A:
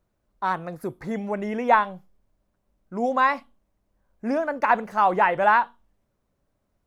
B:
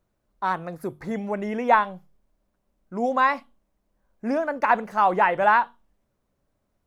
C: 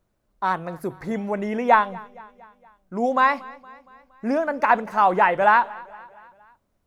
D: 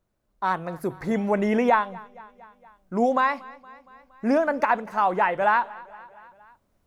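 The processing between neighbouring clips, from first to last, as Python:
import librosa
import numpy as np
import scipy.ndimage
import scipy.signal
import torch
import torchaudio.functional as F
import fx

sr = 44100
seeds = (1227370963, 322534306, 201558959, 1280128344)

y1 = fx.hum_notches(x, sr, base_hz=50, count=3)
y2 = fx.echo_feedback(y1, sr, ms=233, feedback_pct=55, wet_db=-22.0)
y2 = F.gain(torch.from_numpy(y2), 2.0).numpy()
y3 = fx.recorder_agc(y2, sr, target_db=-7.5, rise_db_per_s=6.0, max_gain_db=30)
y3 = F.gain(torch.from_numpy(y3), -4.5).numpy()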